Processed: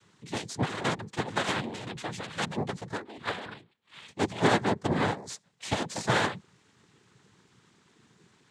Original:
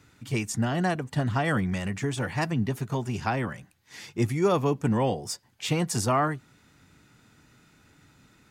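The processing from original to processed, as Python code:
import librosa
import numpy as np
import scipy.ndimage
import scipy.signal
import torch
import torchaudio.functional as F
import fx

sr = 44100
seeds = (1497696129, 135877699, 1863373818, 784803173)

y = fx.cheby_harmonics(x, sr, harmonics=(6, 7), levels_db=(-22, -12), full_scale_db=-11.5)
y = fx.lpc_monotone(y, sr, seeds[0], pitch_hz=280.0, order=10, at=(2.97, 4.08))
y = fx.noise_vocoder(y, sr, seeds[1], bands=6)
y = y * librosa.db_to_amplitude(-1.0)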